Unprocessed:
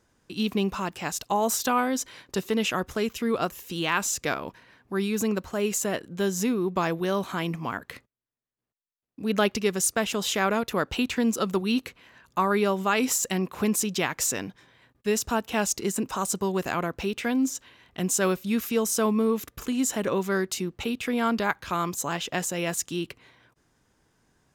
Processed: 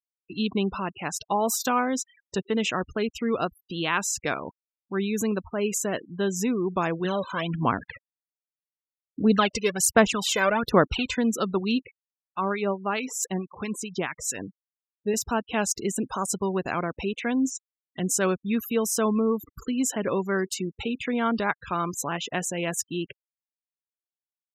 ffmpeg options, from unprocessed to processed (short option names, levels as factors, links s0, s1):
-filter_complex "[0:a]asplit=3[s0][s1][s2];[s0]afade=t=out:st=7.04:d=0.02[s3];[s1]aphaser=in_gain=1:out_gain=1:delay=2:decay=0.64:speed=1.3:type=sinusoidal,afade=t=in:st=7.04:d=0.02,afade=t=out:st=11.16:d=0.02[s4];[s2]afade=t=in:st=11.16:d=0.02[s5];[s3][s4][s5]amix=inputs=3:normalize=0,asettb=1/sr,asplit=3[s6][s7][s8];[s6]atrim=end=11.824[s9];[s7]atrim=start=11.82:end=15.14,asetpts=PTS-STARTPTS,afade=t=in:d=0.004:c=qsin,afade=t=out:st=3.316:d=0.004:c=qsin,acrossover=split=1100[s10][s11];[s10]aeval=exprs='val(0)*(1-0.7/2+0.7/2*cos(2*PI*4.6*n/s))':c=same[s12];[s11]aeval=exprs='val(0)*(1-0.7/2-0.7/2*cos(2*PI*4.6*n/s))':c=same[s13];[s12][s13]amix=inputs=2:normalize=0[s14];[s8]atrim=start=15.136[s15];[s9][s14]acrossfade=d=0.004:c1=hsin:c2=qsin[s16];[s16][s15]acrossfade=d=0.004:c1=qsin:c2=hsin,afftfilt=real='re*gte(hypot(re,im),0.02)':imag='im*gte(hypot(re,im),0.02)':win_size=1024:overlap=0.75"